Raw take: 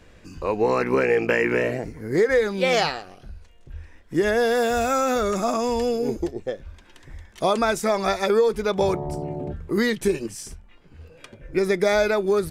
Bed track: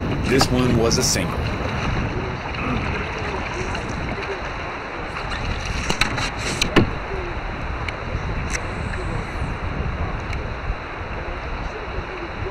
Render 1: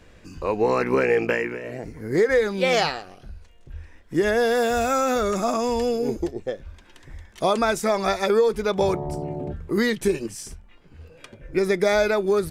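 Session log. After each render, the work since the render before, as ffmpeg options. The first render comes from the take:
-filter_complex "[0:a]asplit=3[a][b][c];[a]atrim=end=1.59,asetpts=PTS-STARTPTS,afade=t=out:st=1.23:d=0.36:silence=0.223872[d];[b]atrim=start=1.59:end=1.62,asetpts=PTS-STARTPTS,volume=-13dB[e];[c]atrim=start=1.62,asetpts=PTS-STARTPTS,afade=t=in:d=0.36:silence=0.223872[f];[d][e][f]concat=n=3:v=0:a=1"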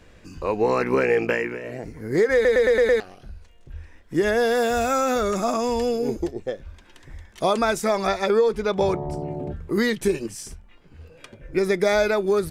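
-filter_complex "[0:a]asettb=1/sr,asplit=3[a][b][c];[a]atrim=end=8.074[d];[b]atrim=start=8.07:end=9.29,asetpts=PTS-STARTPTS,afade=t=in:d=0.004:c=qsin,afade=t=out:st=1.216:d=0.004:c=qsin,highshelf=f=9.4k:g=-11.5[e];[c]atrim=start=9.286[f];[d][e]acrossfade=d=0.004:c1=hsin:c2=qsin[g];[g][f]acrossfade=d=0.004:c1=qsin:c2=hsin,asplit=7[h][i][j][k][l][m][n];[h]atrim=end=2.452[o];[i]atrim=start=2.338:end=2.452[p];[j]atrim=start=2.338:end=2.452[q];[k]atrim=start=2.338:end=2.452[r];[l]atrim=start=2.338:end=2.452[s];[m]atrim=start=2.338:end=2.452[t];[n]atrim=start=2.998[u];[o][p]acrossfade=d=0.004:c1=hsin:c2=hsin[v];[v][q]acrossfade=d=0.004:c1=hsin:c2=hsin[w];[w][r]acrossfade=d=0.004:c1=hsin:c2=hsin[x];[x][s]acrossfade=d=0.004:c1=hsin:c2=hsin[y];[y][t]acrossfade=d=0.004:c1=hsin:c2=hsin[z];[z][u]acrossfade=d=0.004:c1=hsin:c2=hsin"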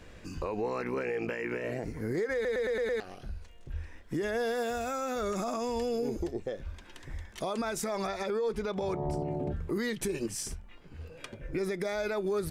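-af "acompressor=threshold=-24dB:ratio=6,alimiter=limit=-24dB:level=0:latency=1:release=93"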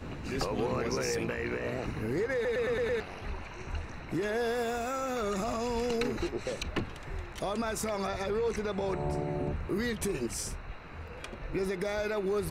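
-filter_complex "[1:a]volume=-18dB[a];[0:a][a]amix=inputs=2:normalize=0"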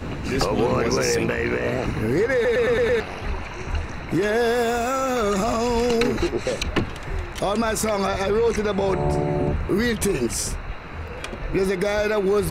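-af "volume=10.5dB"

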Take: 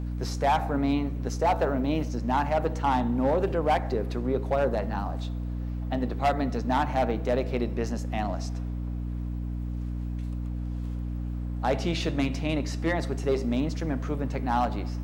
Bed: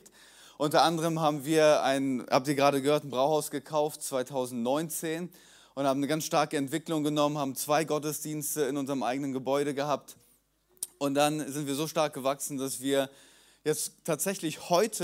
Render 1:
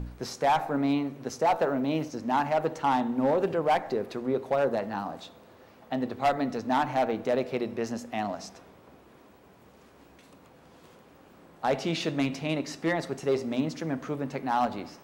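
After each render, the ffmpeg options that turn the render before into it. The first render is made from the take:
-af "bandreject=f=60:t=h:w=4,bandreject=f=120:t=h:w=4,bandreject=f=180:t=h:w=4,bandreject=f=240:t=h:w=4,bandreject=f=300:t=h:w=4"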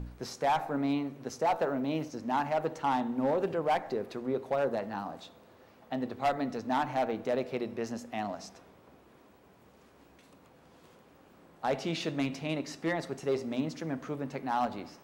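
-af "volume=-4dB"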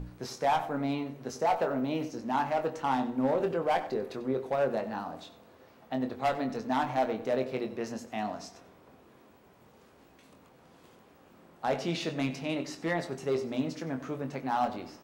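-filter_complex "[0:a]asplit=2[a][b];[b]adelay=23,volume=-7.5dB[c];[a][c]amix=inputs=2:normalize=0,asplit=2[d][e];[e]adelay=93.29,volume=-15dB,highshelf=f=4k:g=-2.1[f];[d][f]amix=inputs=2:normalize=0"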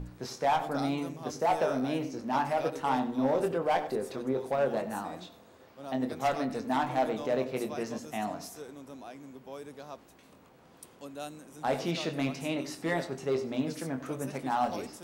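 -filter_complex "[1:a]volume=-15.5dB[a];[0:a][a]amix=inputs=2:normalize=0"

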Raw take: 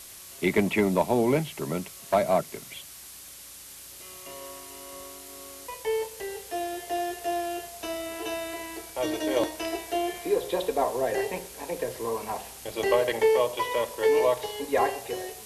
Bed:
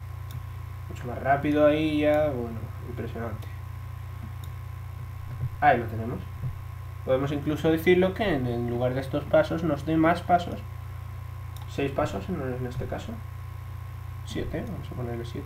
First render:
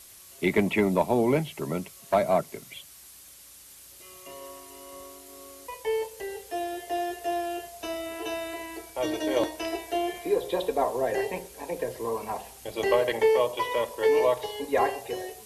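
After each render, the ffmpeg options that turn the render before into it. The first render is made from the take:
-af "afftdn=nr=6:nf=-45"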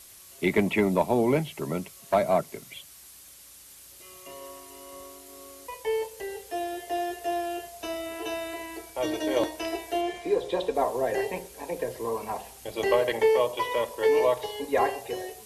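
-filter_complex "[0:a]asettb=1/sr,asplit=3[a][b][c];[a]atrim=end=10.014[d];[b]atrim=start=10.01:end=10.75,asetpts=PTS-STARTPTS,afade=t=in:d=0.004:c=qsin,afade=t=out:st=0.736:d=0.004:c=qsin,lowpass=7.6k[e];[c]atrim=start=10.746[f];[d][e]acrossfade=d=0.004:c1=hsin:c2=qsin[g];[g][f]acrossfade=d=0.004:c1=qsin:c2=hsin"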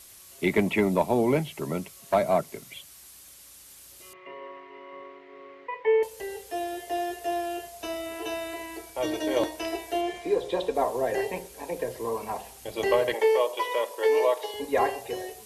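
-filter_complex "[0:a]asettb=1/sr,asplit=3[a][b][c];[a]atrim=end=4.134[d];[b]atrim=start=4.13:end=6.03,asetpts=PTS-STARTPTS,afade=t=in:d=0.004:c=qsin,afade=t=out:st=1.896:d=0.004:c=qsin,highpass=180,equalizer=f=240:t=q:w=4:g=-4,equalizer=f=430:t=q:w=4:g=7,equalizer=f=670:t=q:w=4:g=-4,equalizer=f=990:t=q:w=4:g=5,equalizer=f=2k:t=q:w=4:g=10,lowpass=f=2.7k:w=0.5412,lowpass=f=2.7k:w=1.3066[e];[c]atrim=start=6.026[f];[d][e]acrossfade=d=0.004:c1=hsin:c2=qsin[g];[g][f]acrossfade=d=0.004:c1=qsin:c2=hsin,asettb=1/sr,asplit=3[h][i][j];[h]atrim=end=13.144[k];[i]atrim=start=13.14:end=14.54,asetpts=PTS-STARTPTS,afade=t=in:d=0.004:c=qsin,afade=t=out:st=1.396:d=0.004:c=qsin,highpass=f=330:w=0.5412,highpass=f=330:w=1.3066[l];[j]atrim=start=14.536[m];[k][l]acrossfade=d=0.004:c1=hsin:c2=qsin[n];[n][m]acrossfade=d=0.004:c1=qsin:c2=hsin"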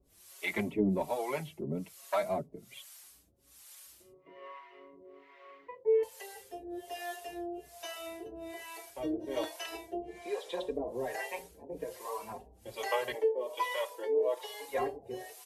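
-filter_complex "[0:a]acrossover=split=540[a][b];[a]aeval=exprs='val(0)*(1-1/2+1/2*cos(2*PI*1.2*n/s))':c=same[c];[b]aeval=exprs='val(0)*(1-1/2-1/2*cos(2*PI*1.2*n/s))':c=same[d];[c][d]amix=inputs=2:normalize=0,asplit=2[e][f];[f]adelay=5,afreqshift=2.9[g];[e][g]amix=inputs=2:normalize=1"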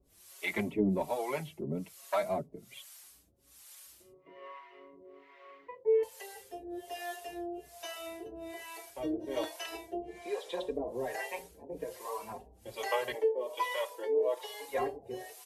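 -af anull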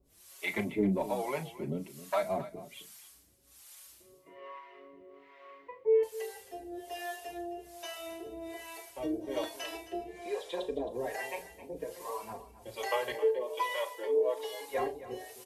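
-filter_complex "[0:a]asplit=2[a][b];[b]adelay=36,volume=-13dB[c];[a][c]amix=inputs=2:normalize=0,aecho=1:1:266:0.178"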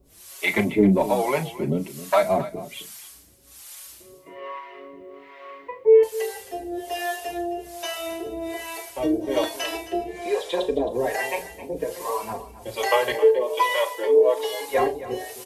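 -af "volume=11.5dB"

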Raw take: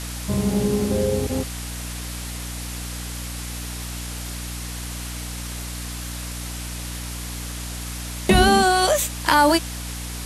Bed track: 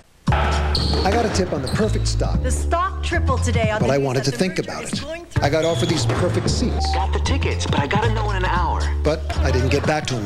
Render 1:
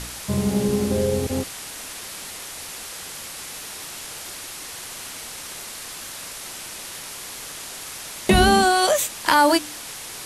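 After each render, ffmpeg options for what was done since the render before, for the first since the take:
-af "bandreject=f=60:t=h:w=4,bandreject=f=120:t=h:w=4,bandreject=f=180:t=h:w=4,bandreject=f=240:t=h:w=4,bandreject=f=300:t=h:w=4"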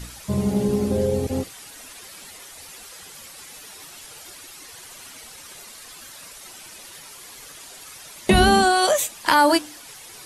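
-af "afftdn=nr=10:nf=-36"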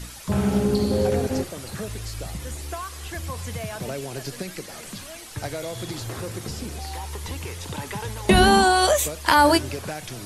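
-filter_complex "[1:a]volume=-13.5dB[a];[0:a][a]amix=inputs=2:normalize=0"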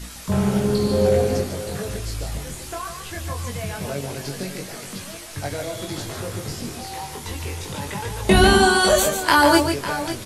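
-filter_complex "[0:a]asplit=2[a][b];[b]adelay=21,volume=-3.5dB[c];[a][c]amix=inputs=2:normalize=0,aecho=1:1:145|551:0.447|0.237"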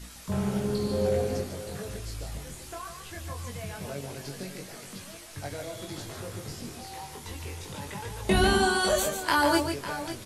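-af "volume=-8.5dB"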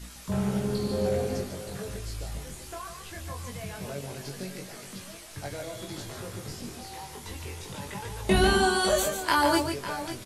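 -filter_complex "[0:a]asplit=2[a][b];[b]adelay=16,volume=-11.5dB[c];[a][c]amix=inputs=2:normalize=0"

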